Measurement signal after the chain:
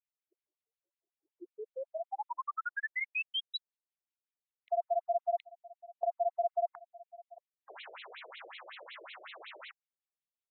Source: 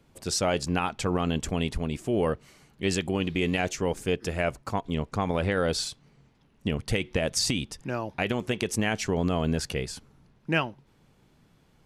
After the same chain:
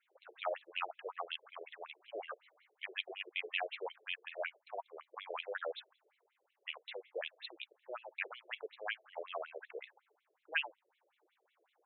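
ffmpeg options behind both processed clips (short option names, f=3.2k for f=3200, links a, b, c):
-filter_complex "[0:a]acrossover=split=570|2000[a][b][c];[a]acompressor=threshold=-46dB:ratio=4[d];[d][b][c]amix=inputs=3:normalize=0,afftfilt=real='re*between(b*sr/1024,450*pow(3000/450,0.5+0.5*sin(2*PI*5.4*pts/sr))/1.41,450*pow(3000/450,0.5+0.5*sin(2*PI*5.4*pts/sr))*1.41)':imag='im*between(b*sr/1024,450*pow(3000/450,0.5+0.5*sin(2*PI*5.4*pts/sr))/1.41,450*pow(3000/450,0.5+0.5*sin(2*PI*5.4*pts/sr))*1.41)':win_size=1024:overlap=0.75,volume=-3.5dB"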